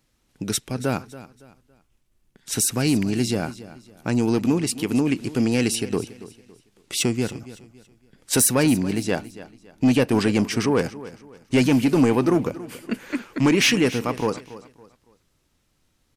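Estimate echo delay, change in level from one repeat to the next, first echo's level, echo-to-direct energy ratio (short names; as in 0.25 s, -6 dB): 0.28 s, -9.5 dB, -16.5 dB, -16.0 dB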